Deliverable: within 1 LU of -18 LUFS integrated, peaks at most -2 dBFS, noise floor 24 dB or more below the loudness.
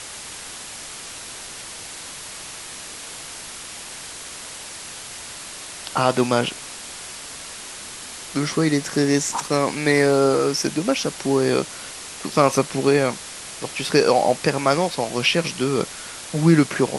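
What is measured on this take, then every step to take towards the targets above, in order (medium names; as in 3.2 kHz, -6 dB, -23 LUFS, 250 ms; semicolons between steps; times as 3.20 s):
noise floor -36 dBFS; noise floor target -45 dBFS; loudness -20.5 LUFS; peak level -2.0 dBFS; loudness target -18.0 LUFS
-> noise print and reduce 9 dB; trim +2.5 dB; peak limiter -2 dBFS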